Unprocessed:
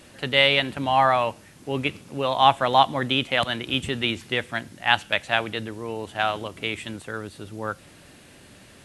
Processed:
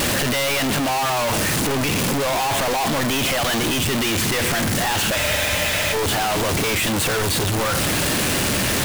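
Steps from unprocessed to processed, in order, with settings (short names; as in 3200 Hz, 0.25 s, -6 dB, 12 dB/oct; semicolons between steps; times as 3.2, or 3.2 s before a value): infinite clipping; spectral freeze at 5.18, 0.76 s; gain +4.5 dB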